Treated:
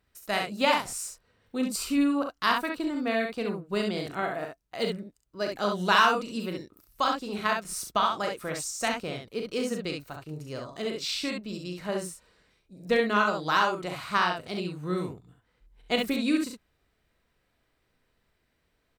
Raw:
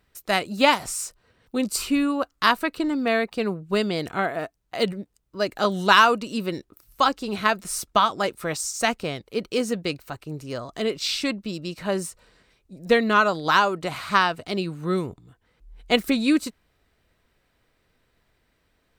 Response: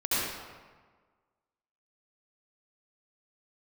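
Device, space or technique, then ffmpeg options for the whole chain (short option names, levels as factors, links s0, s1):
slapback doubling: -filter_complex "[0:a]asplit=3[s0][s1][s2];[s1]adelay=39,volume=0.447[s3];[s2]adelay=67,volume=0.596[s4];[s0][s3][s4]amix=inputs=3:normalize=0,volume=0.447"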